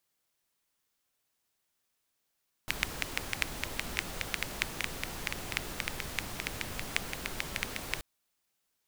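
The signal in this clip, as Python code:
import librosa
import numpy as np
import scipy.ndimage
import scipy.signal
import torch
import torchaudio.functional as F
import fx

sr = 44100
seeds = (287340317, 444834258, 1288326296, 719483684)

y = fx.rain(sr, seeds[0], length_s=5.33, drops_per_s=6.9, hz=2200.0, bed_db=0)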